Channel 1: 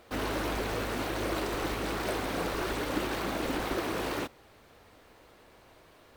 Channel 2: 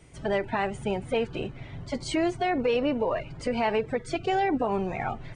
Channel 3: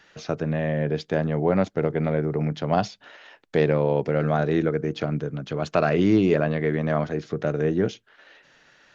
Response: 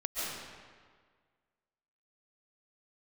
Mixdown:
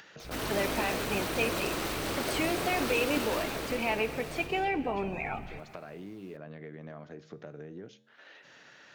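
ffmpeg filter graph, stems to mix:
-filter_complex "[0:a]highshelf=frequency=3500:gain=9,adelay=200,volume=-2dB,afade=type=out:start_time=3.18:duration=0.78:silence=0.316228,asplit=2[link_01][link_02];[link_02]volume=-5.5dB[link_03];[1:a]equalizer=frequency=2500:width_type=o:width=0.37:gain=13,bandreject=frequency=60:width_type=h:width=6,bandreject=frequency=120:width_type=h:width=6,aeval=exprs='val(0)+0.00631*(sin(2*PI*60*n/s)+sin(2*PI*2*60*n/s)/2+sin(2*PI*3*60*n/s)/3+sin(2*PI*4*60*n/s)/4+sin(2*PI*5*60*n/s)/5)':channel_layout=same,adelay=250,volume=-2dB,asplit=2[link_04][link_05];[link_05]volume=-20dB[link_06];[2:a]highpass=100,acompressor=threshold=-24dB:ratio=6,volume=-14dB[link_07];[3:a]atrim=start_sample=2205[link_08];[link_03][link_06]amix=inputs=2:normalize=0[link_09];[link_09][link_08]afir=irnorm=-1:irlink=0[link_10];[link_01][link_04][link_07][link_10]amix=inputs=4:normalize=0,acompressor=mode=upward:threshold=-33dB:ratio=2.5,flanger=delay=9.5:depth=6.5:regen=-89:speed=0.35:shape=sinusoidal"

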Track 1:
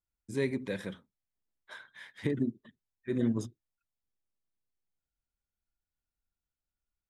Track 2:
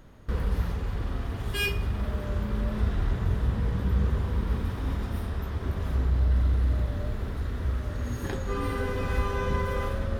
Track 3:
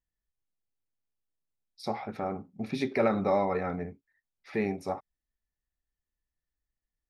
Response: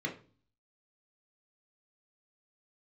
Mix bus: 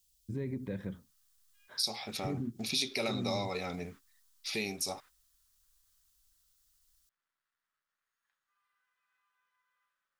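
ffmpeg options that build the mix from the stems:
-filter_complex "[0:a]aemphasis=mode=reproduction:type=riaa,alimiter=limit=-19dB:level=0:latency=1,volume=-5.5dB[link_01];[1:a]highpass=frequency=1200:width=0.5412,highpass=frequency=1200:width=1.3066,highshelf=frequency=3800:gain=-7.5,acrusher=bits=9:dc=4:mix=0:aa=0.000001,volume=-17.5dB[link_02];[2:a]aexciter=amount=13.1:drive=7.1:freq=2700,volume=-3.5dB,asplit=2[link_03][link_04];[link_04]apad=whole_len=449774[link_05];[link_02][link_05]sidechaingate=range=-23dB:threshold=-50dB:ratio=16:detection=peak[link_06];[link_01][link_06][link_03]amix=inputs=3:normalize=0,acompressor=threshold=-35dB:ratio=2"

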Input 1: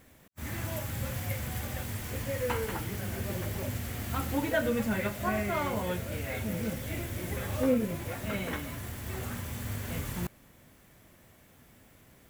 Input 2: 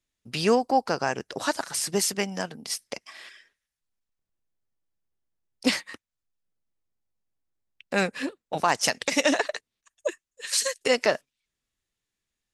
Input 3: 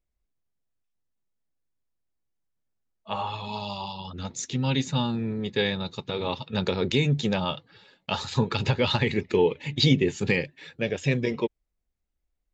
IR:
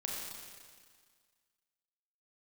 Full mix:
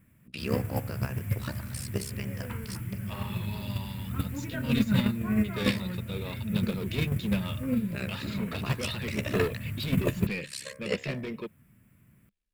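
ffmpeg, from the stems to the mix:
-filter_complex "[0:a]equalizer=frequency=125:width_type=o:width=1:gain=10,equalizer=frequency=500:width_type=o:width=1:gain=-8,equalizer=frequency=4000:width_type=o:width=1:gain=-12,volume=2.5dB[link_01];[1:a]bandreject=frequency=67.36:width_type=h:width=4,bandreject=frequency=134.72:width_type=h:width=4,bandreject=frequency=202.08:width_type=h:width=4,bandreject=frequency=269.44:width_type=h:width=4,bandreject=frequency=336.8:width_type=h:width=4,bandreject=frequency=404.16:width_type=h:width=4,bandreject=frequency=471.52:width_type=h:width=4,bandreject=frequency=538.88:width_type=h:width=4,bandreject=frequency=606.24:width_type=h:width=4,bandreject=frequency=673.6:width_type=h:width=4,bandreject=frequency=740.96:width_type=h:width=4,bandreject=frequency=808.32:width_type=h:width=4,bandreject=frequency=875.68:width_type=h:width=4,bandreject=frequency=943.04:width_type=h:width=4,bandreject=frequency=1010.4:width_type=h:width=4,bandreject=frequency=1077.76:width_type=h:width=4,bandreject=frequency=1145.12:width_type=h:width=4,bandreject=frequency=1212.48:width_type=h:width=4,bandreject=frequency=1279.84:width_type=h:width=4,bandreject=frequency=1347.2:width_type=h:width=4,bandreject=frequency=1414.56:width_type=h:width=4,bandreject=frequency=1481.92:width_type=h:width=4,bandreject=frequency=1549.28:width_type=h:width=4,bandreject=frequency=1616.64:width_type=h:width=4,bandreject=frequency=1684:width_type=h:width=4,bandreject=frequency=1751.36:width_type=h:width=4,bandreject=frequency=1818.72:width_type=h:width=4,bandreject=frequency=1886.08:width_type=h:width=4,bandreject=frequency=1953.44:width_type=h:width=4,bandreject=frequency=2020.8:width_type=h:width=4,bandreject=frequency=2088.16:width_type=h:width=4,bandreject=frequency=2155.52:width_type=h:width=4,bandreject=frequency=2222.88:width_type=h:width=4,bandreject=frequency=2290.24:width_type=h:width=4,bandreject=frequency=2357.6:width_type=h:width=4,bandreject=frequency=2424.96:width_type=h:width=4,alimiter=limit=-15.5dB:level=0:latency=1:release=115,tremolo=f=67:d=0.974,volume=2.5dB[link_02];[2:a]asoftclip=type=hard:threshold=-24dB,volume=1dB[link_03];[link_01][link_02][link_03]amix=inputs=3:normalize=0,agate=range=-9dB:threshold=-22dB:ratio=16:detection=peak,equalizer=frequency=200:width_type=o:width=0.33:gain=8,equalizer=frequency=800:width_type=o:width=0.33:gain=-11,equalizer=frequency=2500:width_type=o:width=0.33:gain=5,equalizer=frequency=6300:width_type=o:width=0.33:gain=-9"

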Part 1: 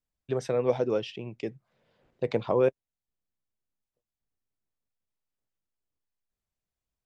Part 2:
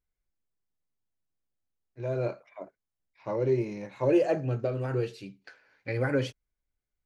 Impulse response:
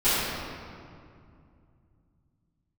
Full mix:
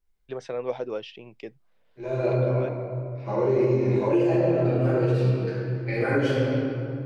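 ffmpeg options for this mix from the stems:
-filter_complex "[0:a]lowpass=4900,lowshelf=frequency=280:gain=-11.5,volume=-1dB[link_01];[1:a]volume=-4.5dB,asplit=3[link_02][link_03][link_04];[link_03]volume=-4.5dB[link_05];[link_04]apad=whole_len=311024[link_06];[link_01][link_06]sidechaincompress=threshold=-39dB:ratio=8:attack=16:release=877[link_07];[2:a]atrim=start_sample=2205[link_08];[link_05][link_08]afir=irnorm=-1:irlink=0[link_09];[link_07][link_02][link_09]amix=inputs=3:normalize=0,alimiter=limit=-13.5dB:level=0:latency=1:release=161"

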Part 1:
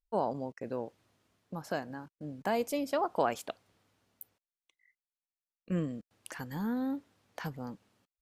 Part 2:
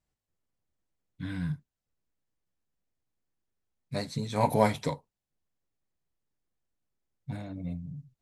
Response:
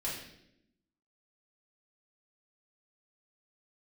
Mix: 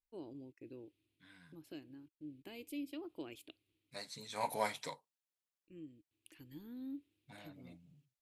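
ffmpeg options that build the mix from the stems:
-filter_complex "[0:a]firequalizer=gain_entry='entry(120,0);entry(210,-11);entry(310,10);entry(470,-9);entry(720,-18);entry(1600,-13);entry(2500,5);entry(3900,1);entry(5800,-10);entry(10000,1)':delay=0.05:min_phase=1,volume=-12dB[link_01];[1:a]highpass=frequency=1400:poles=1,volume=-4.5dB,afade=type=in:start_time=3.5:duration=0.75:silence=0.316228,asplit=2[link_02][link_03];[link_03]apad=whole_len=366494[link_04];[link_01][link_04]sidechaincompress=threshold=-53dB:ratio=6:attack=16:release=1170[link_05];[link_05][link_02]amix=inputs=2:normalize=0"

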